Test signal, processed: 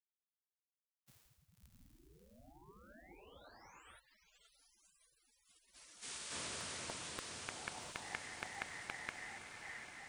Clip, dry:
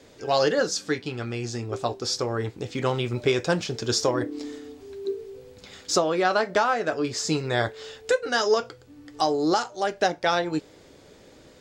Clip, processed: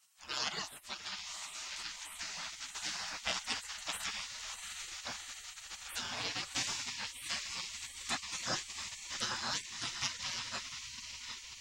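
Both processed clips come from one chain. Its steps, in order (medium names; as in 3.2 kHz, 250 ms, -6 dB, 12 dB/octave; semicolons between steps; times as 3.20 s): echo that smears into a reverb 729 ms, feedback 66%, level -6.5 dB; spectral gate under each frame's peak -25 dB weak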